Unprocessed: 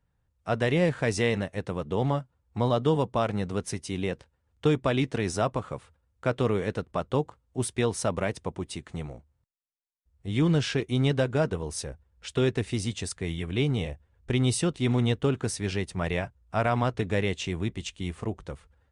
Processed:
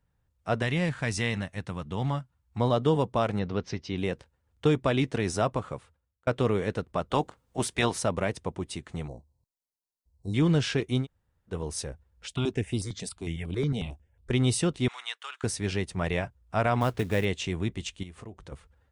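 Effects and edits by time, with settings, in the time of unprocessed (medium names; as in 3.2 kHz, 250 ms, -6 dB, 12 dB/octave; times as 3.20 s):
0.62–2.60 s: peaking EQ 450 Hz -10 dB 1.3 oct
3.39–3.98 s: steep low-pass 5.4 kHz
5.67–6.27 s: fade out
7.09–7.98 s: spectral peaks clipped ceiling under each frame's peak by 14 dB
9.08–10.34 s: brick-wall FIR band-stop 1.1–3.8 kHz
11.02–11.52 s: room tone, crossfade 0.10 s
12.27–14.31 s: stepped phaser 11 Hz 330–6300 Hz
14.88–15.44 s: high-pass 1.1 kHz 24 dB/octave
16.81–17.25 s: companded quantiser 6-bit
18.03–18.52 s: compression 3:1, threshold -43 dBFS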